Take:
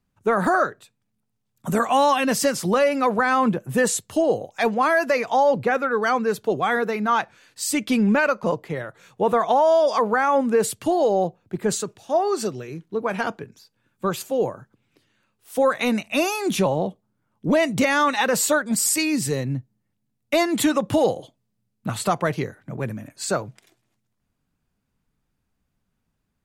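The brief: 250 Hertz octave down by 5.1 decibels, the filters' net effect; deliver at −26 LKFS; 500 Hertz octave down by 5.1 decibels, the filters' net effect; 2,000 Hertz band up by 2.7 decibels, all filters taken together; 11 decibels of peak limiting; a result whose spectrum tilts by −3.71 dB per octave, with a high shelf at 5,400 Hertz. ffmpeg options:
ffmpeg -i in.wav -af "equalizer=frequency=250:width_type=o:gain=-5,equalizer=frequency=500:width_type=o:gain=-5.5,equalizer=frequency=2000:width_type=o:gain=3,highshelf=frequency=5400:gain=8.5,volume=-1.5dB,alimiter=limit=-15dB:level=0:latency=1" out.wav

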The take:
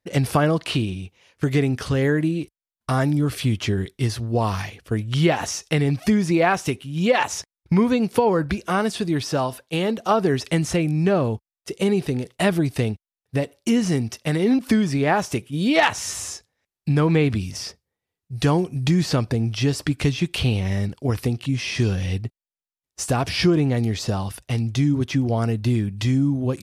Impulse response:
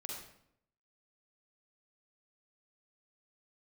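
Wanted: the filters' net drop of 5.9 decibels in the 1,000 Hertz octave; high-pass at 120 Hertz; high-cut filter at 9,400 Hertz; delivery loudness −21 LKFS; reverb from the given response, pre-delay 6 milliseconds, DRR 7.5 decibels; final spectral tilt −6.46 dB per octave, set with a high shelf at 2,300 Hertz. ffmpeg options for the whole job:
-filter_complex "[0:a]highpass=120,lowpass=9400,equalizer=frequency=1000:width_type=o:gain=-7.5,highshelf=frequency=2300:gain=-4,asplit=2[link_01][link_02];[1:a]atrim=start_sample=2205,adelay=6[link_03];[link_02][link_03]afir=irnorm=-1:irlink=0,volume=-6dB[link_04];[link_01][link_04]amix=inputs=2:normalize=0,volume=2dB"

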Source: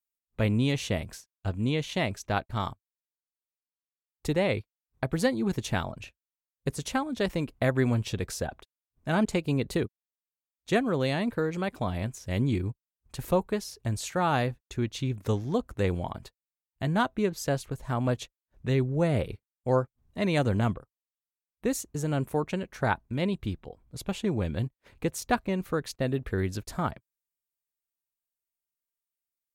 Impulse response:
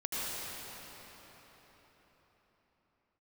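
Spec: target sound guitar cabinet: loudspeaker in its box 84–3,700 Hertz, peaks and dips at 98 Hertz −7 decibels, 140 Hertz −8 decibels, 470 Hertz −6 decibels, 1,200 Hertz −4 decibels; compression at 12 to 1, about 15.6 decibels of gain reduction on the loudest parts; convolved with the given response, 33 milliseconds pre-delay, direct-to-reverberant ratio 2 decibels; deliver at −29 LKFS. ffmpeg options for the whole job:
-filter_complex "[0:a]acompressor=threshold=-36dB:ratio=12,asplit=2[link_01][link_02];[1:a]atrim=start_sample=2205,adelay=33[link_03];[link_02][link_03]afir=irnorm=-1:irlink=0,volume=-8.5dB[link_04];[link_01][link_04]amix=inputs=2:normalize=0,highpass=84,equalizer=frequency=98:width_type=q:width=4:gain=-7,equalizer=frequency=140:width_type=q:width=4:gain=-8,equalizer=frequency=470:width_type=q:width=4:gain=-6,equalizer=frequency=1200:width_type=q:width=4:gain=-4,lowpass=frequency=3700:width=0.5412,lowpass=frequency=3700:width=1.3066,volume=14.5dB"

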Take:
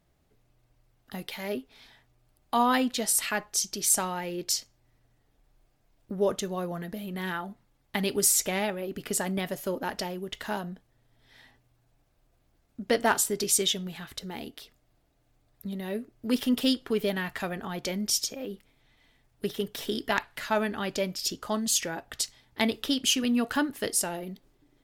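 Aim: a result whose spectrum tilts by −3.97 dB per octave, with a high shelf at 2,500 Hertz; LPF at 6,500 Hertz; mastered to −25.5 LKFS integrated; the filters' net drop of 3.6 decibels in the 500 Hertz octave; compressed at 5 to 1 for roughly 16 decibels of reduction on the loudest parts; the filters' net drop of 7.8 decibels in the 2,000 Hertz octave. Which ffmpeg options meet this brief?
ffmpeg -i in.wav -af "lowpass=6500,equalizer=frequency=500:width_type=o:gain=-4,equalizer=frequency=2000:width_type=o:gain=-7.5,highshelf=frequency=2500:gain=-5.5,acompressor=threshold=-41dB:ratio=5,volume=19dB" out.wav

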